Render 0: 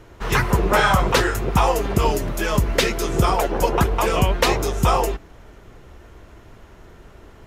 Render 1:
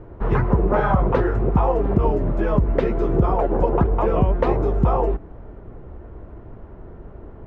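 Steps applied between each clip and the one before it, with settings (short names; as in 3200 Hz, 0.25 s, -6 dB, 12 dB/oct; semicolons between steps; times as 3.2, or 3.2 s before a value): Bessel low-pass 680 Hz, order 2; compressor 2:1, threshold -24 dBFS, peak gain reduction 6.5 dB; gain +6.5 dB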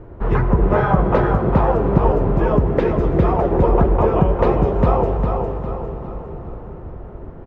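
feedback echo 0.404 s, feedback 43%, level -5 dB; on a send at -9 dB: reverb RT60 5.6 s, pre-delay 21 ms; on the sum: gain +1.5 dB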